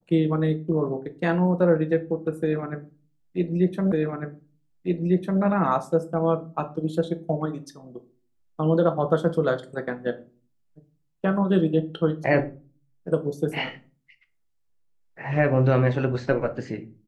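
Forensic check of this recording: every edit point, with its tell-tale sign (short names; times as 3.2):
3.92 repeat of the last 1.5 s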